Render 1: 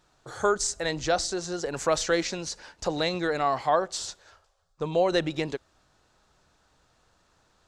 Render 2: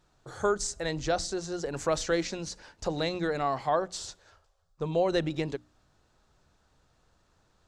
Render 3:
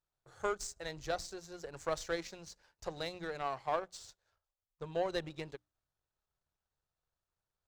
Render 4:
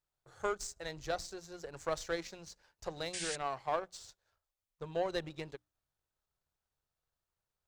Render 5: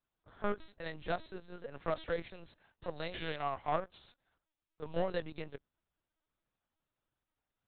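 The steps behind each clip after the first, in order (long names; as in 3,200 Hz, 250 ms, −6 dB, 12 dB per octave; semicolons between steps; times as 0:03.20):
low-shelf EQ 330 Hz +7.5 dB; mains-hum notches 60/120/180/240/300 Hz; level −5 dB
parametric band 250 Hz −9.5 dB 0.74 octaves; power curve on the samples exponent 1.4; level −4.5 dB
sound drawn into the spectrogram noise, 0:03.13–0:03.36, 1,500–9,600 Hz −40 dBFS
linear-prediction vocoder at 8 kHz pitch kept; level +1 dB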